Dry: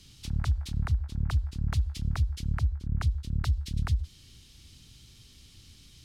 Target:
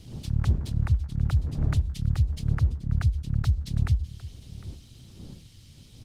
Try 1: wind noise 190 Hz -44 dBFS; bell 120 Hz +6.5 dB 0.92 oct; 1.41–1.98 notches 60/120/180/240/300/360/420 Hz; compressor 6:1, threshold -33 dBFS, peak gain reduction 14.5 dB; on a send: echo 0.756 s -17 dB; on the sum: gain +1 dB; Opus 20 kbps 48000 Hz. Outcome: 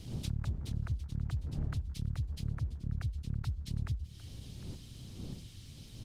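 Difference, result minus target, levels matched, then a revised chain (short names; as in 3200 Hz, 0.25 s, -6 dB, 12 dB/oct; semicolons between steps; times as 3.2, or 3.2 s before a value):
compressor: peak gain reduction +14.5 dB
wind noise 190 Hz -44 dBFS; bell 120 Hz +6.5 dB 0.92 oct; 1.41–1.98 notches 60/120/180/240/300/360/420 Hz; on a send: echo 0.756 s -17 dB; on the sum: gain +1 dB; Opus 20 kbps 48000 Hz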